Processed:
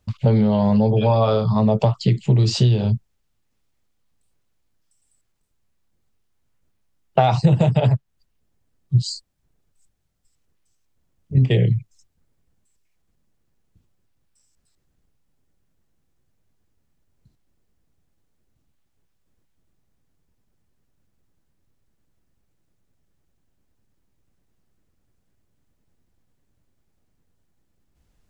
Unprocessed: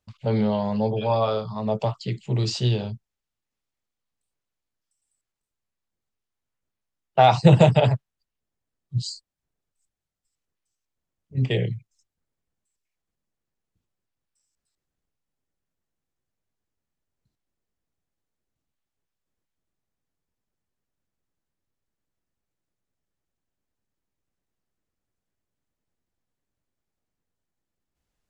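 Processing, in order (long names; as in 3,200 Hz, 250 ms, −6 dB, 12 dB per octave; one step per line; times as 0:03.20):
low-shelf EQ 310 Hz +9 dB
downward compressor 8 to 1, threshold −22 dBFS, peak gain reduction 19 dB
level +9 dB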